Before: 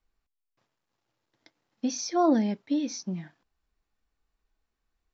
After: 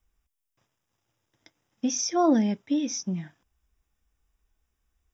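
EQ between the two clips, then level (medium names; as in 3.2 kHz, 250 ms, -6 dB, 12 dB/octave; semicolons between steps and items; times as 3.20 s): Butterworth band-stop 4.3 kHz, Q 4; peaking EQ 68 Hz +11 dB 1.9 oct; treble shelf 4 kHz +9 dB; 0.0 dB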